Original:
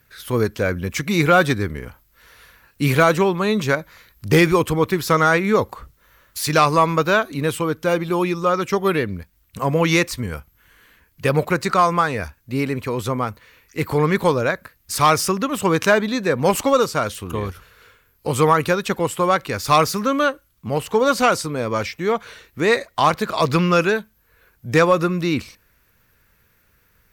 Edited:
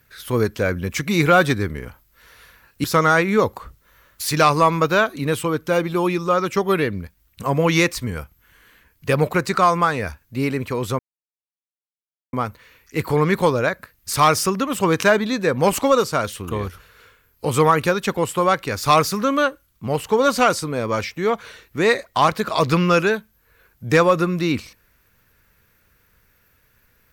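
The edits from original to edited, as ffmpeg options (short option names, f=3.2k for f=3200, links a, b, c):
-filter_complex "[0:a]asplit=3[a][b][c];[a]atrim=end=2.842[d];[b]atrim=start=4.998:end=13.15,asetpts=PTS-STARTPTS,afade=t=out:st=8.148:d=0.004:c=hsin,apad=pad_dur=1.34[e];[c]atrim=start=13.15,asetpts=PTS-STARTPTS,afade=t=in:d=0.004:c=hsin[f];[e][f]concat=n=2:v=0:a=1[g];[d][g]acrossfade=d=0.004:c1=hsin:c2=hsin"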